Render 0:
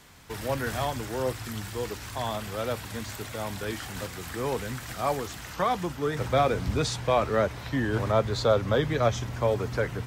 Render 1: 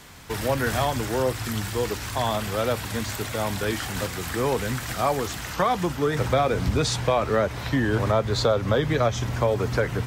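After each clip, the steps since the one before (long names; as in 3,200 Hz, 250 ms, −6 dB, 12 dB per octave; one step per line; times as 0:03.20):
downward compressor 3 to 1, threshold −26 dBFS, peak gain reduction 7.5 dB
level +7 dB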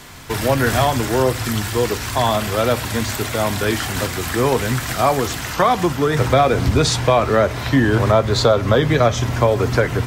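convolution reverb RT60 0.55 s, pre-delay 3 ms, DRR 13 dB
level +7 dB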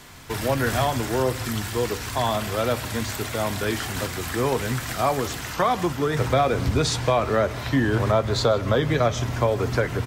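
single-tap delay 156 ms −21 dB
level −6 dB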